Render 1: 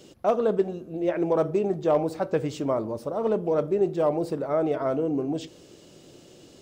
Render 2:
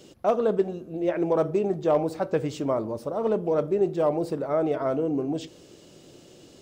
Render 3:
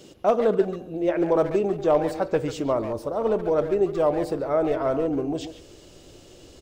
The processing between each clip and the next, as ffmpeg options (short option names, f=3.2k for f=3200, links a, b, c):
-af anull
-filter_complex "[0:a]asplit=2[a][b];[b]adelay=140,highpass=300,lowpass=3.4k,asoftclip=type=hard:threshold=-22.5dB,volume=-9dB[c];[a][c]amix=inputs=2:normalize=0,asubboost=boost=9:cutoff=57,volume=2.5dB"